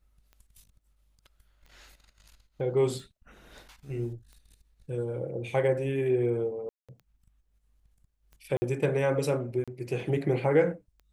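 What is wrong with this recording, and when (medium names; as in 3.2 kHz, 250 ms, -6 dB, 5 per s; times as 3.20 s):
tick 45 rpm -38 dBFS
6.69–6.89 s: dropout 196 ms
8.57–8.62 s: dropout 50 ms
9.64–9.68 s: dropout 36 ms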